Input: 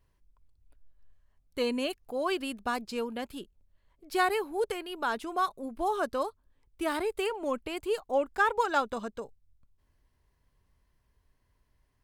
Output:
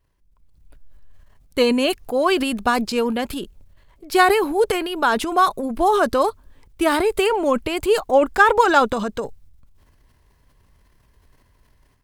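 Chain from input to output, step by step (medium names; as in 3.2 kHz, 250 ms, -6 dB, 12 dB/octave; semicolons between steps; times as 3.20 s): level rider gain up to 11.5 dB; transient shaper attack +2 dB, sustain +8 dB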